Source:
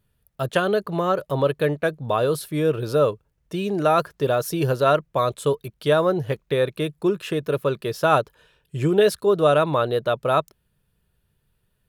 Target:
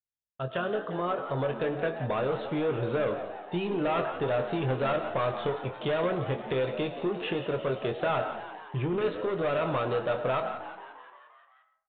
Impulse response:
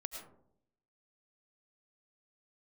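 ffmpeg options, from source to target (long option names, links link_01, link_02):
-filter_complex "[0:a]agate=range=-33dB:threshold=-43dB:ratio=3:detection=peak,flanger=delay=7.8:depth=2.6:regen=-84:speed=0.84:shape=triangular,dynaudnorm=framelen=510:gausssize=7:maxgain=11.5dB,asoftclip=type=tanh:threshold=-16dB,acompressor=threshold=-24dB:ratio=6,asplit=2[link_01][link_02];[link_02]adelay=23,volume=-8dB[link_03];[link_01][link_03]amix=inputs=2:normalize=0,asplit=8[link_04][link_05][link_06][link_07][link_08][link_09][link_10][link_11];[link_05]adelay=175,afreqshift=92,volume=-12dB[link_12];[link_06]adelay=350,afreqshift=184,volume=-16dB[link_13];[link_07]adelay=525,afreqshift=276,volume=-20dB[link_14];[link_08]adelay=700,afreqshift=368,volume=-24dB[link_15];[link_09]adelay=875,afreqshift=460,volume=-28.1dB[link_16];[link_10]adelay=1050,afreqshift=552,volume=-32.1dB[link_17];[link_11]adelay=1225,afreqshift=644,volume=-36.1dB[link_18];[link_04][link_12][link_13][link_14][link_15][link_16][link_17][link_18]amix=inputs=8:normalize=0,asplit=2[link_19][link_20];[1:a]atrim=start_sample=2205,lowshelf=frequency=350:gain=-11,highshelf=frequency=4200:gain=-11.5[link_21];[link_20][link_21]afir=irnorm=-1:irlink=0,volume=0.5dB[link_22];[link_19][link_22]amix=inputs=2:normalize=0,aresample=8000,aresample=44100,volume=-6.5dB"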